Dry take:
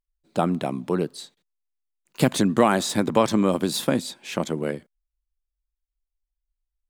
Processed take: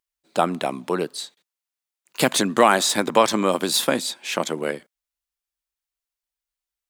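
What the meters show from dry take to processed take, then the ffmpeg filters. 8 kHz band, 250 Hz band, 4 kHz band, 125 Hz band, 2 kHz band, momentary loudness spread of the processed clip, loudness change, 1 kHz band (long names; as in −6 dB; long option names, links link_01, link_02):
+7.0 dB, −3.0 dB, +7.0 dB, −6.0 dB, +6.5 dB, 13 LU, +2.0 dB, +5.0 dB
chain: -af "highpass=frequency=730:poles=1,volume=7dB"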